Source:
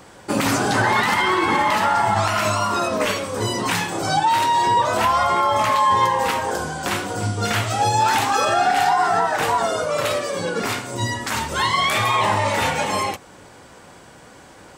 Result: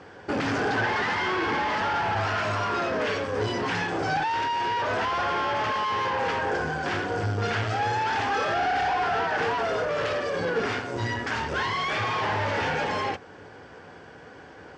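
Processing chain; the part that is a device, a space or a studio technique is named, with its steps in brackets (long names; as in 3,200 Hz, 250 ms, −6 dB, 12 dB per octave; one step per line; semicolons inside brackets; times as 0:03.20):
guitar amplifier (tube saturation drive 26 dB, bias 0.7; bass and treble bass +11 dB, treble +9 dB; loudspeaker in its box 110–4,200 Hz, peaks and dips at 130 Hz −9 dB, 200 Hz −8 dB, 440 Hz +8 dB, 760 Hz +4 dB, 1,600 Hz +8 dB, 3,900 Hz −8 dB)
level −1 dB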